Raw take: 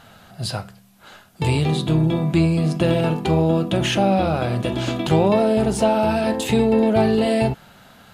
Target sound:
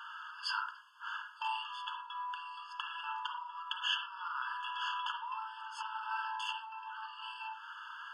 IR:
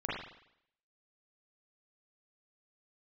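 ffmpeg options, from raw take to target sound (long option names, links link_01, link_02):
-filter_complex "[0:a]highpass=190,lowpass=2700,alimiter=limit=-15.5dB:level=0:latency=1,acompressor=threshold=-30dB:ratio=12,asplit=2[link_01][link_02];[1:a]atrim=start_sample=2205,afade=type=out:start_time=0.17:duration=0.01,atrim=end_sample=7938[link_03];[link_02][link_03]afir=irnorm=-1:irlink=0,volume=-6.5dB[link_04];[link_01][link_04]amix=inputs=2:normalize=0,afftfilt=real='re*eq(mod(floor(b*sr/1024/880),2),1)':imag='im*eq(mod(floor(b*sr/1024/880),2),1)':win_size=1024:overlap=0.75,volume=2.5dB"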